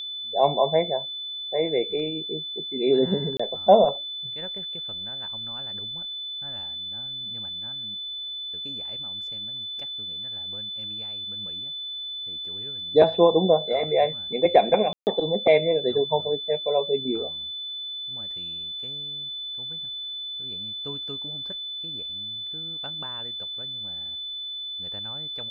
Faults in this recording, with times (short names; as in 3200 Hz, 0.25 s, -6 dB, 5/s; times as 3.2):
tone 3500 Hz -31 dBFS
3.37–3.4 gap 25 ms
14.93–15.07 gap 0.139 s